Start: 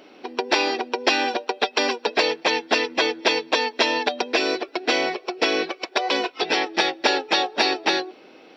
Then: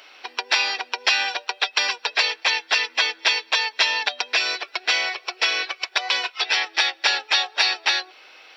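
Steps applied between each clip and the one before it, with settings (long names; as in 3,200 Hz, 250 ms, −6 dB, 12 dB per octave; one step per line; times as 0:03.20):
high-pass filter 1,300 Hz 12 dB per octave
in parallel at 0 dB: downward compressor, threshold −34 dBFS, peak gain reduction 15.5 dB
on the sum: level +1.5 dB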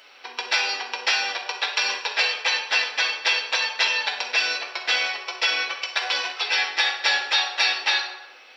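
convolution reverb RT60 0.95 s, pre-delay 3 ms, DRR −1 dB
level −4.5 dB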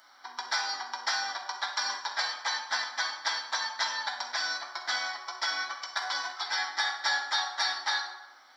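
phaser with its sweep stopped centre 1,100 Hz, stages 4
level −2 dB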